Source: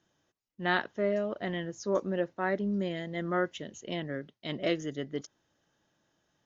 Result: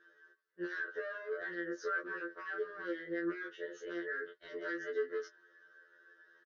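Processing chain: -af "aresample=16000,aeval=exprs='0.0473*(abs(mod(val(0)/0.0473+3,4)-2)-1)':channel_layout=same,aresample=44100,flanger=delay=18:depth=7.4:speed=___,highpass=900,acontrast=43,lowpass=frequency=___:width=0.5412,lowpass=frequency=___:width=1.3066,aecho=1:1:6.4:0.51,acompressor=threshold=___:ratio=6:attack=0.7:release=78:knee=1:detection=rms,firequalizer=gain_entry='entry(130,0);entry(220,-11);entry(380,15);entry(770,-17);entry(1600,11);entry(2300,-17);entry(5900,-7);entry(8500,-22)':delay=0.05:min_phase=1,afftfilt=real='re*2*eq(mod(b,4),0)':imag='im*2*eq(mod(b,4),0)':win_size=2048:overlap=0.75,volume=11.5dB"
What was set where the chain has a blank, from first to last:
0.42, 4200, 4200, -47dB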